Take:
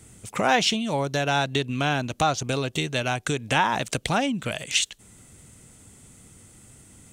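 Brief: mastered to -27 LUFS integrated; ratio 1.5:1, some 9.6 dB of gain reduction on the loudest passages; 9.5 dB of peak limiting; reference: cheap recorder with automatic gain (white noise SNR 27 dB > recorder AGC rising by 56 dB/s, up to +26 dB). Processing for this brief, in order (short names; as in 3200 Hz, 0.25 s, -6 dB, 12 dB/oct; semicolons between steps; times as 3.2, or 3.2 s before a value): compressor 1.5:1, threshold -44 dBFS; limiter -23.5 dBFS; white noise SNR 27 dB; recorder AGC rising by 56 dB/s, up to +26 dB; gain +8.5 dB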